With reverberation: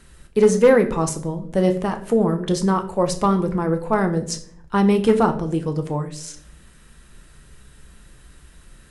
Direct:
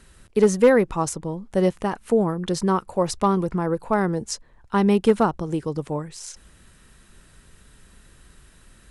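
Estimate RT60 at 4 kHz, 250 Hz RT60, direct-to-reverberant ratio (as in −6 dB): 0.40 s, 0.85 s, 5.5 dB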